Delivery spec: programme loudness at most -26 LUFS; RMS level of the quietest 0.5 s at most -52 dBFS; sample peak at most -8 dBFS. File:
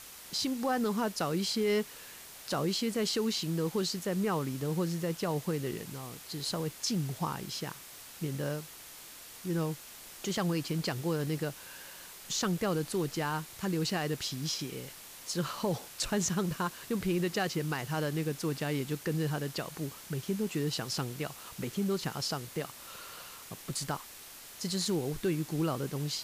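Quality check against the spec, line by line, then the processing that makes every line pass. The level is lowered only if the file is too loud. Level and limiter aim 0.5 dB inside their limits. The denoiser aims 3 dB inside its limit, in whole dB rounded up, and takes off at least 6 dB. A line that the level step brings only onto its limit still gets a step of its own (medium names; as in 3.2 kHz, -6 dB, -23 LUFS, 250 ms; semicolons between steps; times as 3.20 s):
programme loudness -33.5 LUFS: pass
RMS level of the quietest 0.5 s -49 dBFS: fail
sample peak -21.0 dBFS: pass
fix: noise reduction 6 dB, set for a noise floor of -49 dBFS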